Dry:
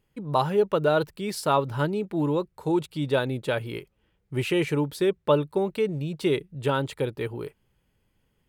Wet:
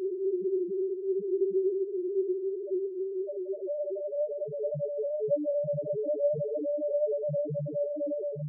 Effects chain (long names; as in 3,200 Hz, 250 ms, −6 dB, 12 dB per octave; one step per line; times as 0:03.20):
extreme stretch with random phases 19×, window 0.50 s, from 0:05.01
pitch vibrato 4.3 Hz 31 cents
spectral peaks only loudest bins 1